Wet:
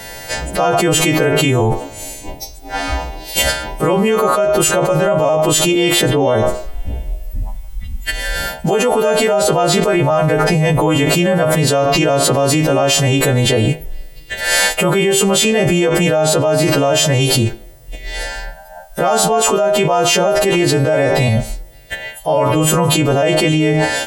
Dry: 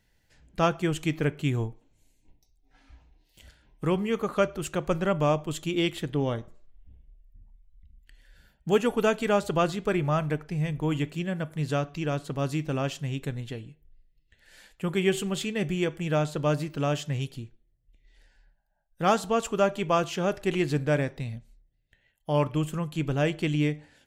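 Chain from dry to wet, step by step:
every partial snapped to a pitch grid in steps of 2 semitones
parametric band 660 Hz +14 dB 1.7 octaves
envelope flattener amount 100%
level −7 dB

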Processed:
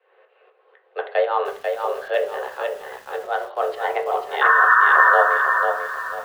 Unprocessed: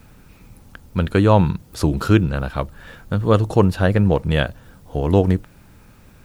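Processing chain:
low-pass that shuts in the quiet parts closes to 2,600 Hz, open at −14 dBFS
shaped tremolo saw up 4 Hz, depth 80%
sound drawn into the spectrogram noise, 0:04.41–0:05.16, 700–1,600 Hz −15 dBFS
single-sideband voice off tune +250 Hz 200–3,600 Hz
delay with a high-pass on its return 162 ms, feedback 84%, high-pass 3,000 Hz, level −15.5 dB
on a send at −2 dB: convolution reverb RT60 0.35 s, pre-delay 3 ms
on the sum: feedback echo at a low word length 493 ms, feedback 35%, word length 7 bits, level −4.5 dB
level −2.5 dB

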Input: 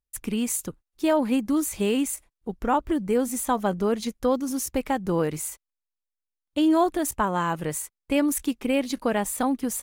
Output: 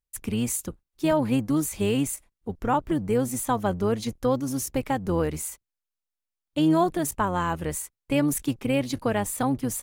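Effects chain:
sub-octave generator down 1 octave, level −5 dB
level −1 dB

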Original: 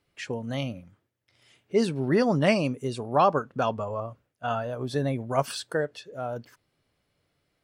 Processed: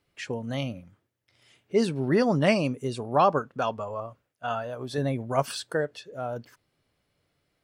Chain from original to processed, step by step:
0:03.48–0:04.98: low-shelf EQ 400 Hz −6 dB

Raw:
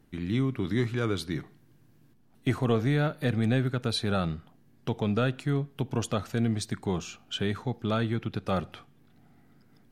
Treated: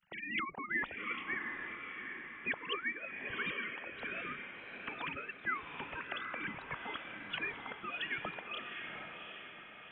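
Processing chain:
three sine waves on the formant tracks
gate on every frequency bin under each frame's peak −20 dB weak
reverb reduction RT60 0.89 s
feedback delay with all-pass diffusion 768 ms, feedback 47%, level −4.5 dB
level +8 dB

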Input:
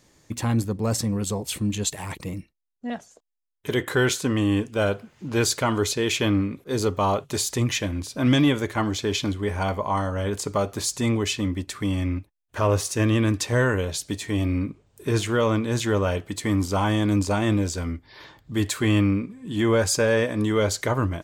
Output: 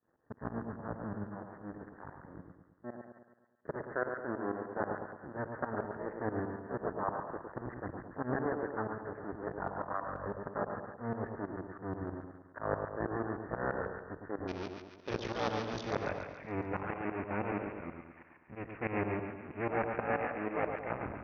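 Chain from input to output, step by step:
sub-harmonics by changed cycles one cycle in 2, muted
Butterworth low-pass 1,800 Hz 96 dB per octave, from 0:14.47 6,000 Hz, from 0:15.90 2,600 Hz
shaped tremolo saw up 6.2 Hz, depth 90%
high-pass filter 200 Hz 6 dB per octave
echo with a time of its own for lows and highs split 1,100 Hz, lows 108 ms, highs 141 ms, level −5 dB
level −6 dB

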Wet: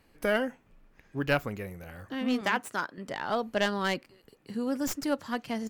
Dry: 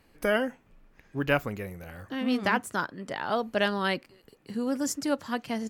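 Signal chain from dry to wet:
stylus tracing distortion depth 0.067 ms
0:02.41–0:02.98: high-pass filter 310 Hz 6 dB per octave
level −1.5 dB

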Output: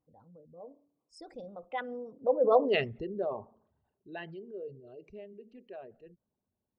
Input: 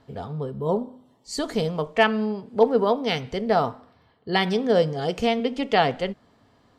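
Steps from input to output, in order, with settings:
spectral envelope exaggerated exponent 2
source passing by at 0:02.62, 43 m/s, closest 5.8 metres
tape wow and flutter 19 cents

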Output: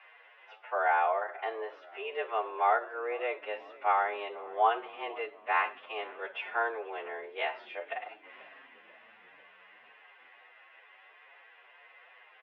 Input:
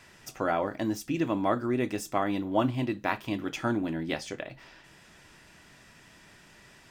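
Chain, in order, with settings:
phase-vocoder stretch with locked phases 1.8×
single-sideband voice off tune +110 Hz 440–2,800 Hz
echo with shifted repeats 490 ms, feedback 60%, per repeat −49 Hz, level −22 dB
level +1.5 dB

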